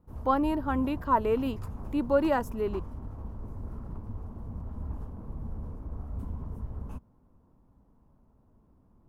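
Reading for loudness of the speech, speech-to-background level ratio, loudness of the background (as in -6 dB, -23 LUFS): -28.5 LUFS, 12.5 dB, -41.0 LUFS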